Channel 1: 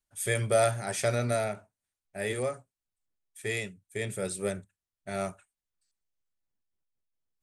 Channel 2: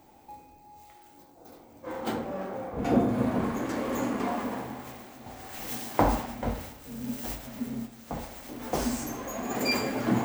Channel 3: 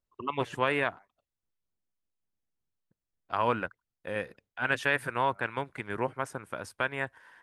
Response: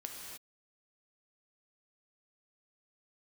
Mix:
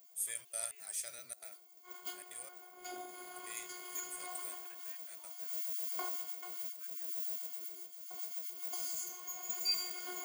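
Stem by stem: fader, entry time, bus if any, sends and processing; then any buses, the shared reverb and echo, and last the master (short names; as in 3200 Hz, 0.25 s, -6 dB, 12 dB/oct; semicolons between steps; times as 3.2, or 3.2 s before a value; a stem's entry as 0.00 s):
-8.0 dB, 0.00 s, no send, high shelf 8500 Hz +7.5 dB; step gate "xxxxx.xx.x" 169 bpm -24 dB
-1.5 dB, 0.00 s, no send, ripple EQ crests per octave 1.8, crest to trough 15 dB; robotiser 360 Hz
-20.0 dB, 0.00 s, no send, endless flanger 3.3 ms +2 Hz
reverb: off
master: differentiator; limiter -24 dBFS, peak gain reduction 11 dB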